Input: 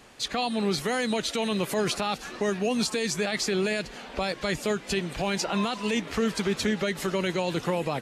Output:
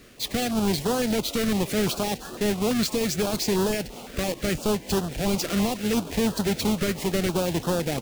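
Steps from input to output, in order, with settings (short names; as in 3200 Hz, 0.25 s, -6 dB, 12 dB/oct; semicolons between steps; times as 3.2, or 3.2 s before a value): half-waves squared off; harmoniser -12 st -17 dB; stepped notch 5.9 Hz 860–2200 Hz; gain -1.5 dB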